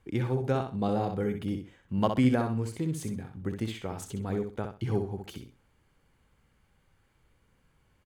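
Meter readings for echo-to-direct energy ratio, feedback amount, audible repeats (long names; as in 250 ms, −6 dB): −6.0 dB, 24%, 3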